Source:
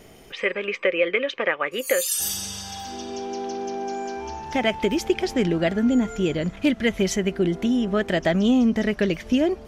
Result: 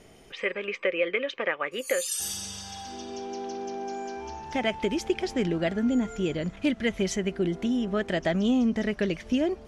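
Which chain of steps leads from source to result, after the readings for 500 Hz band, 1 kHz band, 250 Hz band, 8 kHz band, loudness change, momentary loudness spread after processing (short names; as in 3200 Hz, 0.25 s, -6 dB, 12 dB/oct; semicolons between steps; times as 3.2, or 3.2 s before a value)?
-5.0 dB, -5.0 dB, -5.0 dB, -5.5 dB, -5.0 dB, 11 LU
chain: LPF 11000 Hz 24 dB/oct; gain -5 dB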